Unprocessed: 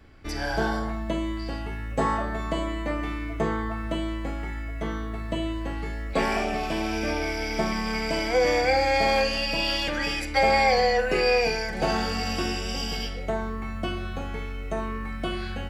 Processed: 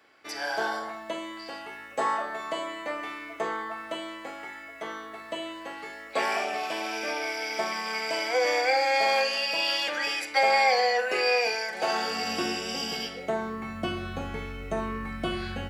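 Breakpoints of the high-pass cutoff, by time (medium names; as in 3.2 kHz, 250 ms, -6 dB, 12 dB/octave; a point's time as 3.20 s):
11.86 s 550 Hz
12.39 s 220 Hz
13.28 s 220 Hz
14.24 s 64 Hz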